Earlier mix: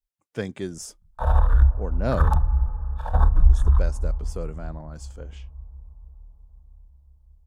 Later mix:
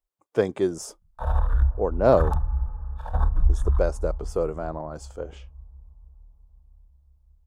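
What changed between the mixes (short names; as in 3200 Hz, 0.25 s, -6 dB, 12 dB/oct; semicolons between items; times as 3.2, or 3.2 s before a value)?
speech: add band shelf 630 Hz +10 dB 2.3 oct; background -4.5 dB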